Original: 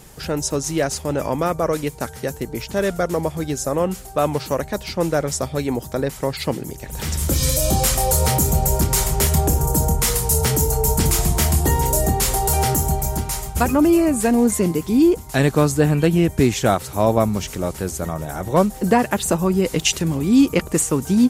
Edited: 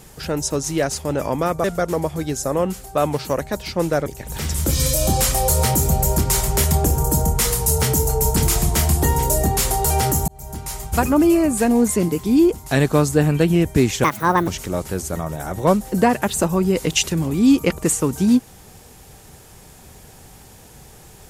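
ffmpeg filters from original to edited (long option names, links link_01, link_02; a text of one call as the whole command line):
ffmpeg -i in.wav -filter_complex "[0:a]asplit=6[link_01][link_02][link_03][link_04][link_05][link_06];[link_01]atrim=end=1.642[link_07];[link_02]atrim=start=2.848:end=5.272[link_08];[link_03]atrim=start=6.688:end=12.91,asetpts=PTS-STARTPTS,afade=type=out:start_time=6.218:duration=0.004:curve=hsin[link_09];[link_04]atrim=start=12.91:end=16.674,asetpts=PTS-STARTPTS,afade=type=in:duration=0.67[link_10];[link_05]atrim=start=16.67:end=17.37,asetpts=PTS-STARTPTS,asetrate=70560,aresample=44100[link_11];[link_06]atrim=start=17.366[link_12];[link_07][link_08]acrossfade=duration=0.004:curve1=hsin:curve2=hsin[link_13];[link_09][link_10]concat=n=2:v=0:a=1[link_14];[link_13][link_14]acrossfade=duration=0.004:curve1=hsin:curve2=hsin[link_15];[link_15][link_11]acrossfade=duration=0.004:curve1=hsin:curve2=hsin[link_16];[link_16][link_12]acrossfade=duration=0.004:curve1=hsin:curve2=hsin" out.wav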